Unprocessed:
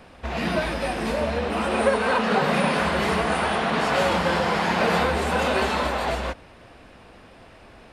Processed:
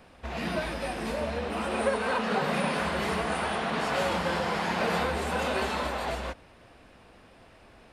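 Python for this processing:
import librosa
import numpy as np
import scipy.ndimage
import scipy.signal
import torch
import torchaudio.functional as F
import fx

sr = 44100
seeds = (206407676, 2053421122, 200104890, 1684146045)

y = fx.high_shelf(x, sr, hz=8200.0, db=4.0)
y = F.gain(torch.from_numpy(y), -6.5).numpy()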